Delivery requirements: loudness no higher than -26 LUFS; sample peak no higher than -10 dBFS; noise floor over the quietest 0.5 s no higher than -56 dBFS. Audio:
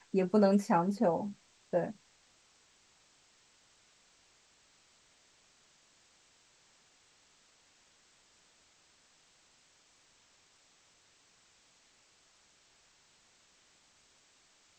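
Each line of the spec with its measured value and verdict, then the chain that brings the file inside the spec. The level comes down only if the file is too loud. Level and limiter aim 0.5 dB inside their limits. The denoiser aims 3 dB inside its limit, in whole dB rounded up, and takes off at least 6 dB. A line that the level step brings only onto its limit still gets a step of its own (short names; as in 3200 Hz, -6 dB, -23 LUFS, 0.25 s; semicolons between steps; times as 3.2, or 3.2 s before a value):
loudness -30.5 LUFS: OK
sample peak -15.5 dBFS: OK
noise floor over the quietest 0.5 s -67 dBFS: OK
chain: none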